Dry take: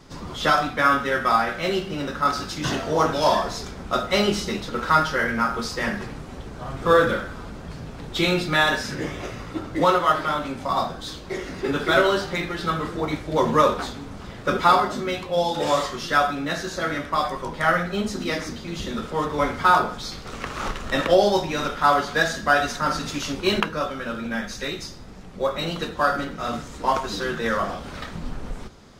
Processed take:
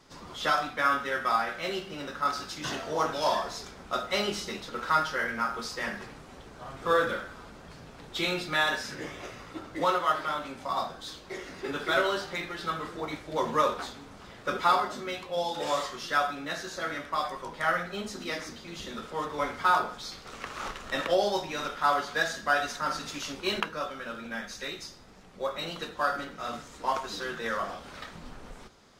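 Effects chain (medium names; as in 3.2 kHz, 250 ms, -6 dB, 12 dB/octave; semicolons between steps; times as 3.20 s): bass shelf 310 Hz -9.5 dB; trim -6 dB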